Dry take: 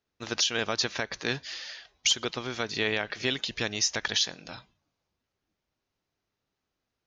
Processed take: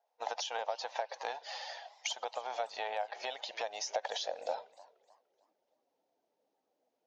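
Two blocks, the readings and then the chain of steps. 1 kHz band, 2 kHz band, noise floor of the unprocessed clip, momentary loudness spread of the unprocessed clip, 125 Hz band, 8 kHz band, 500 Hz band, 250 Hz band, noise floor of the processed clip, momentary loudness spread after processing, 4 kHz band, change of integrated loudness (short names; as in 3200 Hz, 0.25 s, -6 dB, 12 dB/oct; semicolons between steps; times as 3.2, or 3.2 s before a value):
+2.5 dB, -12.5 dB, -85 dBFS, 12 LU, under -40 dB, -13.5 dB, -4.0 dB, -27.5 dB, -83 dBFS, 6 LU, -13.0 dB, -10.0 dB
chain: bin magnitudes rounded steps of 15 dB; band shelf 660 Hz +15 dB 1.2 oct; compressor 6:1, threshold -30 dBFS, peak gain reduction 14.5 dB; high-pass sweep 780 Hz -> 280 Hz, 3.62–5.79; warbling echo 0.301 s, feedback 35%, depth 215 cents, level -21 dB; gain -5.5 dB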